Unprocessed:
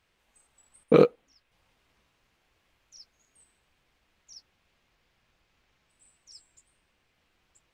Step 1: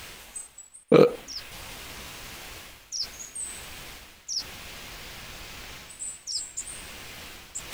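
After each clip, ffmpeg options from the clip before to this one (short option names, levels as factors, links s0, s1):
-af "highshelf=f=4700:g=11,areverse,acompressor=mode=upward:threshold=0.0891:ratio=2.5,areverse,volume=1.19"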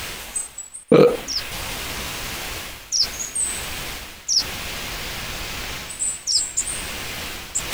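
-af "alimiter=level_in=4.47:limit=0.891:release=50:level=0:latency=1,volume=0.891"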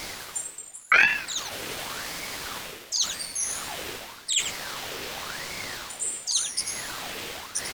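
-filter_complex "[0:a]asplit=2[s0][s1];[s1]aecho=0:1:95:0.355[s2];[s0][s2]amix=inputs=2:normalize=0,aeval=exprs='val(0)*sin(2*PI*1300*n/s+1300*0.7/0.9*sin(2*PI*0.9*n/s))':c=same,volume=0.708"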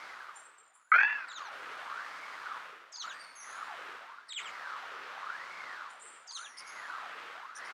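-af "bandpass=f=1300:t=q:w=2.7:csg=0"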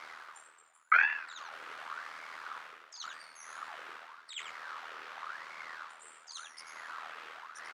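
-af "tremolo=f=80:d=0.621,volume=1.12"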